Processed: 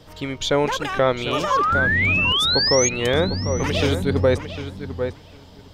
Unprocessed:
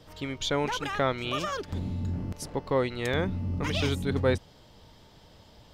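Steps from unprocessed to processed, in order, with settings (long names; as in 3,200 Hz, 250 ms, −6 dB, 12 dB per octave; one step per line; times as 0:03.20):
sound drawn into the spectrogram rise, 0:01.50–0:02.89, 1,000–6,700 Hz −26 dBFS
on a send: feedback echo with a low-pass in the loop 752 ms, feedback 17%, low-pass 3,700 Hz, level −9.5 dB
on the sum: dynamic equaliser 530 Hz, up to +5 dB, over −38 dBFS, Q 1.7
boost into a limiter +12 dB
wow of a warped record 45 rpm, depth 100 cents
level −6 dB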